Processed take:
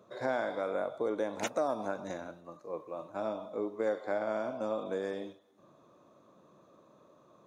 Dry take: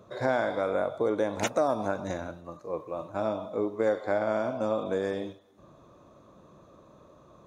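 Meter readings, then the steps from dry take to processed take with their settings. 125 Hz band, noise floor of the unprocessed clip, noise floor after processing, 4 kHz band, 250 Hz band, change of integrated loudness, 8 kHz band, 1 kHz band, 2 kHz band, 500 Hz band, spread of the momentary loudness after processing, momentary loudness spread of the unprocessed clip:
-11.0 dB, -56 dBFS, -63 dBFS, -5.5 dB, -6.5 dB, -5.5 dB, n/a, -5.5 dB, -5.5 dB, -5.5 dB, 10 LU, 10 LU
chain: HPF 170 Hz 12 dB/oct; gain -5.5 dB

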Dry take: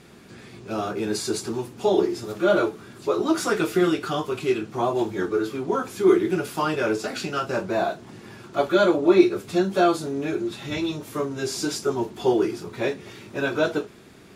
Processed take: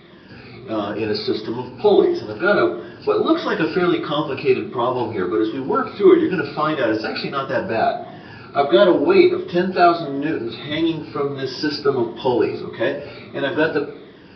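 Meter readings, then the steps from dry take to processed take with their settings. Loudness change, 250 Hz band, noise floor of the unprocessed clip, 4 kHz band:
+4.5 dB, +4.5 dB, -47 dBFS, +5.0 dB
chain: moving spectral ripple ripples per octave 1.2, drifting -1.5 Hz, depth 11 dB; de-hum 72.16 Hz, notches 10; tape echo 66 ms, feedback 63%, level -12 dB, low-pass 1500 Hz; downsampling 11025 Hz; gain +3.5 dB

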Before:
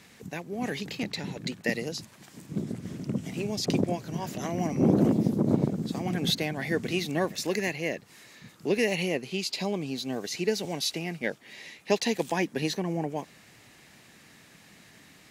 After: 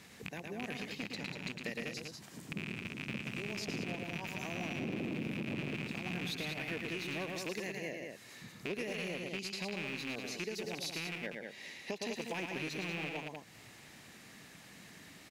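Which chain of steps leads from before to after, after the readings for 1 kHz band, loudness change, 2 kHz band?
-10.5 dB, -10.0 dB, -4.5 dB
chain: rattling part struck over -35 dBFS, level -17 dBFS; on a send: loudspeakers at several distances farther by 38 m -6 dB, 66 m -8 dB; on the sum: limiter -15.5 dBFS, peak gain reduction 8 dB; compressor 2:1, threshold -43 dBFS, peak gain reduction 12 dB; gain -2 dB

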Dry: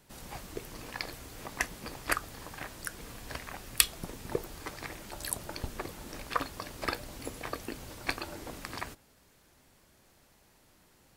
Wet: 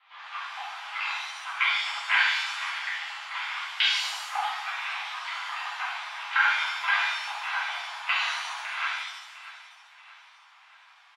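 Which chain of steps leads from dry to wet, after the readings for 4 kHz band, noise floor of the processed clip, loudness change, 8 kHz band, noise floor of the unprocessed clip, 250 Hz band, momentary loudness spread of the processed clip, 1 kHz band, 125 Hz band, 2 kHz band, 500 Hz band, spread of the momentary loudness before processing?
+11.0 dB, -56 dBFS, +9.0 dB, -6.0 dB, -64 dBFS, under -40 dB, 13 LU, +10.0 dB, under -40 dB, +13.5 dB, -10.5 dB, 10 LU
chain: mistuned SSB +360 Hz 510–3200 Hz; feedback echo 0.632 s, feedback 46%, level -16.5 dB; shimmer reverb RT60 1 s, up +7 st, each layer -8 dB, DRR -11 dB

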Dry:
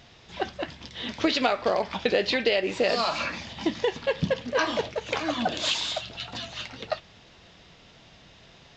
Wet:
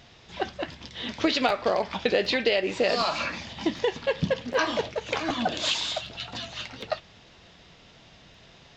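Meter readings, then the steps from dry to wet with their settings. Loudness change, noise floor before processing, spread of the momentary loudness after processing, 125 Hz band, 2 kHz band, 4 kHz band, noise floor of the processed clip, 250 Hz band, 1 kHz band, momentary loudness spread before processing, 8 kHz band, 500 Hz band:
0.0 dB, -54 dBFS, 12 LU, 0.0 dB, 0.0 dB, 0.0 dB, -54 dBFS, 0.0 dB, 0.0 dB, 12 LU, 0.0 dB, 0.0 dB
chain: crackling interface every 0.76 s, samples 512, repeat, from 0.72

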